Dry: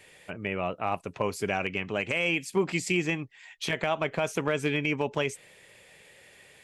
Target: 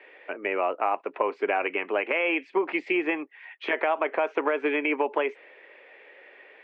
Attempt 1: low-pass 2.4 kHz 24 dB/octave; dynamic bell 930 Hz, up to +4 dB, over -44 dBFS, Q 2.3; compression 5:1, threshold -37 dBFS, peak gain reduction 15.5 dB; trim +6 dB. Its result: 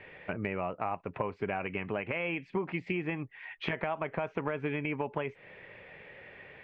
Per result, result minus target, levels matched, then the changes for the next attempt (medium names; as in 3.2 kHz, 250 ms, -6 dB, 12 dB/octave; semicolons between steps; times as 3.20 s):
compression: peak gain reduction +9 dB; 250 Hz band +3.0 dB
change: compression 5:1, threshold -26.5 dBFS, peak gain reduction 7 dB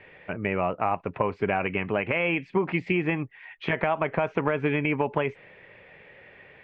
250 Hz band +3.0 dB
add after dynamic bell: steep high-pass 300 Hz 36 dB/octave